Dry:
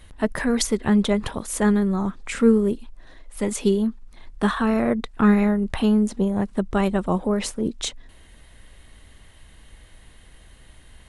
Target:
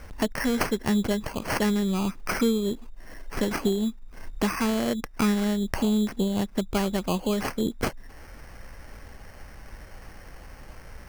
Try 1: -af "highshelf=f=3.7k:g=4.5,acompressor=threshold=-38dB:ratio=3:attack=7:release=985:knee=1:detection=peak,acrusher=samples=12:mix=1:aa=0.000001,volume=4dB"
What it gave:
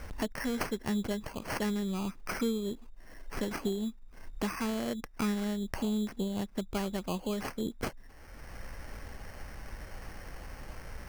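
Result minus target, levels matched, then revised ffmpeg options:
compressor: peak gain reduction +8 dB
-af "highshelf=f=3.7k:g=4.5,acompressor=threshold=-26dB:ratio=3:attack=7:release=985:knee=1:detection=peak,acrusher=samples=12:mix=1:aa=0.000001,volume=4dB"

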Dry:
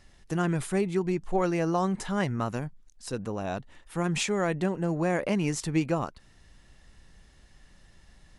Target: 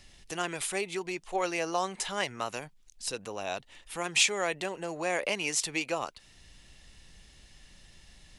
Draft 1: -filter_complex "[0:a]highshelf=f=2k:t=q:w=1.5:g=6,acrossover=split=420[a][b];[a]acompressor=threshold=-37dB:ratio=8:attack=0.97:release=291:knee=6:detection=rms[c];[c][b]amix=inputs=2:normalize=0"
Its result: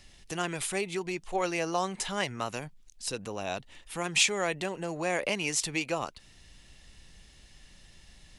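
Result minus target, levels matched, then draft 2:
compressor: peak gain reduction -7 dB
-filter_complex "[0:a]highshelf=f=2k:t=q:w=1.5:g=6,acrossover=split=420[a][b];[a]acompressor=threshold=-45dB:ratio=8:attack=0.97:release=291:knee=6:detection=rms[c];[c][b]amix=inputs=2:normalize=0"

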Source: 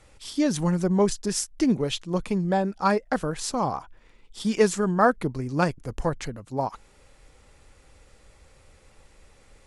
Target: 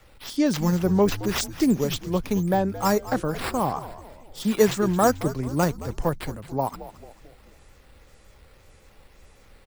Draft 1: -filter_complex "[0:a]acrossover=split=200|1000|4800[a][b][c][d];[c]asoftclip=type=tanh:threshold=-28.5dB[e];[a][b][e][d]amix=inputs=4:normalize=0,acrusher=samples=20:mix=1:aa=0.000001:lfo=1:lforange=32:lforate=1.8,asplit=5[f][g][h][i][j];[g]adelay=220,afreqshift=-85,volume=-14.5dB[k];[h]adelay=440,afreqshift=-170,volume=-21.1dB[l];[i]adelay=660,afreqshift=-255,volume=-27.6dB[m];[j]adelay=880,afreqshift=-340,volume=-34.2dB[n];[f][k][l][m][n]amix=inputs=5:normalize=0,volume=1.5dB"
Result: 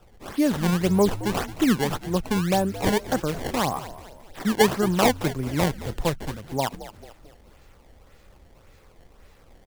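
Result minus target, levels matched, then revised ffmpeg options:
decimation with a swept rate: distortion +10 dB
-filter_complex "[0:a]acrossover=split=200|1000|4800[a][b][c][d];[c]asoftclip=type=tanh:threshold=-28.5dB[e];[a][b][e][d]amix=inputs=4:normalize=0,acrusher=samples=4:mix=1:aa=0.000001:lfo=1:lforange=6.4:lforate=1.8,asplit=5[f][g][h][i][j];[g]adelay=220,afreqshift=-85,volume=-14.5dB[k];[h]adelay=440,afreqshift=-170,volume=-21.1dB[l];[i]adelay=660,afreqshift=-255,volume=-27.6dB[m];[j]adelay=880,afreqshift=-340,volume=-34.2dB[n];[f][k][l][m][n]amix=inputs=5:normalize=0,volume=1.5dB"

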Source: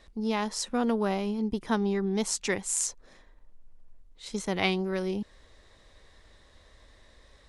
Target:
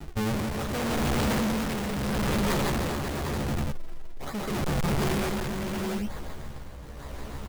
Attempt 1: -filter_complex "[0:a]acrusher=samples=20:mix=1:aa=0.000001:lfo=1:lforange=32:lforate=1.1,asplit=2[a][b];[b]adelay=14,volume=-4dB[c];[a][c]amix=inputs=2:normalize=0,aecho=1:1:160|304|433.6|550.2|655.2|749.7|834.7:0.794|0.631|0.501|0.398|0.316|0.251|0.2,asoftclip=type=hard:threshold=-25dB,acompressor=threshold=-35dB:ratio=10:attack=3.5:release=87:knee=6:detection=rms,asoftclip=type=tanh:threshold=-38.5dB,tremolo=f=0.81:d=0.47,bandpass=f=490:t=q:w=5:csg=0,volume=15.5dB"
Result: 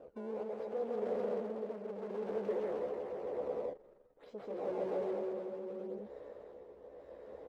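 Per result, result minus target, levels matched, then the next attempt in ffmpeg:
decimation with a swept rate: distortion -14 dB; 500 Hz band +7.5 dB; hard clip: distortion -4 dB
-filter_complex "[0:a]acrusher=samples=76:mix=1:aa=0.000001:lfo=1:lforange=122:lforate=1.1,asplit=2[a][b];[b]adelay=14,volume=-4dB[c];[a][c]amix=inputs=2:normalize=0,aecho=1:1:160|304|433.6|550.2|655.2|749.7|834.7:0.794|0.631|0.501|0.398|0.316|0.251|0.2,asoftclip=type=hard:threshold=-25dB,acompressor=threshold=-35dB:ratio=10:attack=3.5:release=87:knee=6:detection=rms,asoftclip=type=tanh:threshold=-38.5dB,tremolo=f=0.81:d=0.47,bandpass=f=490:t=q:w=5:csg=0,volume=15.5dB"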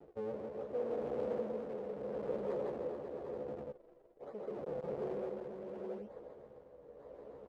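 500 Hz band +7.5 dB; hard clip: distortion -4 dB
-filter_complex "[0:a]acrusher=samples=76:mix=1:aa=0.000001:lfo=1:lforange=122:lforate=1.1,asplit=2[a][b];[b]adelay=14,volume=-4dB[c];[a][c]amix=inputs=2:normalize=0,aecho=1:1:160|304|433.6|550.2|655.2|749.7|834.7:0.794|0.631|0.501|0.398|0.316|0.251|0.2,asoftclip=type=hard:threshold=-25dB,acompressor=threshold=-35dB:ratio=10:attack=3.5:release=87:knee=6:detection=rms,asoftclip=type=tanh:threshold=-38.5dB,tremolo=f=0.81:d=0.47,volume=15.5dB"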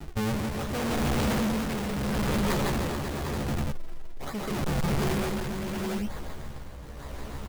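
hard clip: distortion -4 dB
-filter_complex "[0:a]acrusher=samples=76:mix=1:aa=0.000001:lfo=1:lforange=122:lforate=1.1,asplit=2[a][b];[b]adelay=14,volume=-4dB[c];[a][c]amix=inputs=2:normalize=0,aecho=1:1:160|304|433.6|550.2|655.2|749.7|834.7:0.794|0.631|0.501|0.398|0.316|0.251|0.2,asoftclip=type=hard:threshold=-32dB,acompressor=threshold=-35dB:ratio=10:attack=3.5:release=87:knee=6:detection=rms,asoftclip=type=tanh:threshold=-38.5dB,tremolo=f=0.81:d=0.47,volume=15.5dB"

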